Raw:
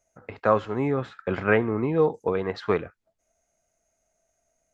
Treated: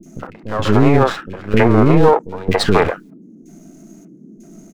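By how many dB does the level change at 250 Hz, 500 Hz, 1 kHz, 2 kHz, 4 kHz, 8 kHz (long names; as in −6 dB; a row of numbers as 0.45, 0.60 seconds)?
+12.5 dB, +8.5 dB, +11.0 dB, +7.0 dB, +18.5 dB, can't be measured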